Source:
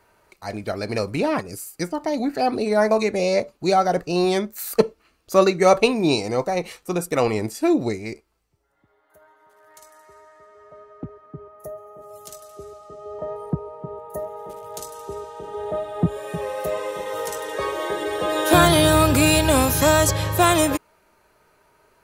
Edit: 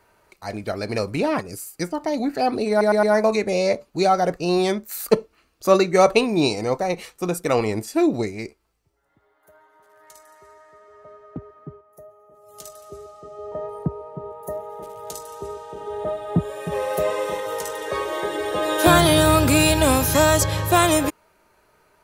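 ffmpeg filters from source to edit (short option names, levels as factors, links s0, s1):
-filter_complex "[0:a]asplit=8[s0][s1][s2][s3][s4][s5][s6][s7];[s0]atrim=end=2.812[s8];[s1]atrim=start=2.698:end=2.812[s9];[s2]atrim=start=2.698:end=2.812[s10];[s3]atrim=start=2.698:end=11.49,asetpts=PTS-STARTPTS,afade=t=out:st=8.662:d=0.13:silence=0.334965[s11];[s4]atrim=start=11.49:end=12.14,asetpts=PTS-STARTPTS,volume=0.335[s12];[s5]atrim=start=12.14:end=16.392,asetpts=PTS-STARTPTS,afade=t=in:d=0.13:silence=0.334965[s13];[s6]atrim=start=16.388:end=17.072,asetpts=PTS-STARTPTS,volume=1.5[s14];[s7]atrim=start=17.068[s15];[s8][s9]acrossfade=d=0.004:c1=hsin:c2=hsin[s16];[s16][s10]acrossfade=d=0.004:c1=hsin:c2=hsin[s17];[s11][s12][s13]concat=n=3:v=0:a=1[s18];[s17][s18]acrossfade=d=0.004:c1=hsin:c2=hsin[s19];[s19][s14]acrossfade=d=0.004:c1=hsin:c2=hsin[s20];[s20][s15]acrossfade=d=0.004:c1=hsin:c2=hsin"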